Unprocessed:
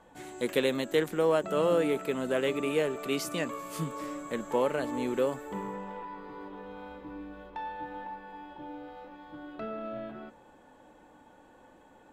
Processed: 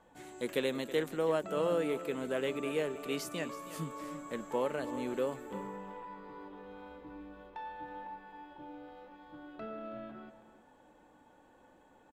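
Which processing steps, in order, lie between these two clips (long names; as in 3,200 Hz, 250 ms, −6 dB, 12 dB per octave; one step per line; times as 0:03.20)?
single-tap delay 324 ms −14.5 dB
level −5.5 dB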